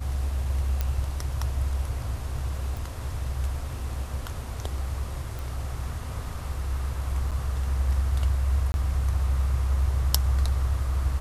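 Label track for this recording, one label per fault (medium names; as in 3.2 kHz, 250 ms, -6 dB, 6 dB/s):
0.810000	0.810000	pop -13 dBFS
2.770000	2.770000	pop
5.390000	5.390000	pop
7.310000	7.320000	dropout 6.8 ms
8.720000	8.740000	dropout 21 ms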